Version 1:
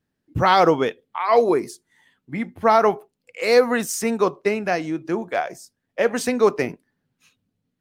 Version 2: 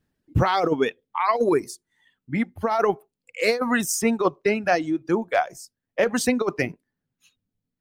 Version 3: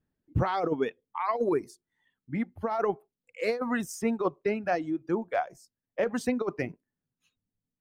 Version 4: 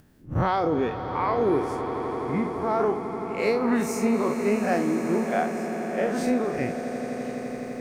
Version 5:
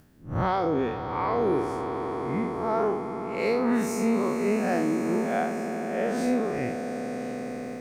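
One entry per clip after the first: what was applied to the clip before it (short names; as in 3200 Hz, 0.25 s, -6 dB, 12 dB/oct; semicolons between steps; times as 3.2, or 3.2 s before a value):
low shelf 68 Hz +9 dB; reverb removal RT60 1.8 s; negative-ratio compressor -18 dBFS, ratio -0.5
high shelf 2400 Hz -10 dB; gain -6 dB
time blur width 0.105 s; upward compressor, threshold -50 dBFS; swelling echo 84 ms, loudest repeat 8, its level -15 dB; gain +7.5 dB
time blur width 99 ms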